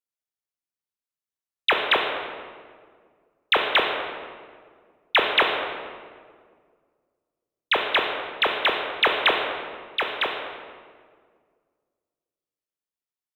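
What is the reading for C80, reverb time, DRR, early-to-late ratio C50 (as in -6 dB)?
5.5 dB, 1.8 s, 1.5 dB, 3.5 dB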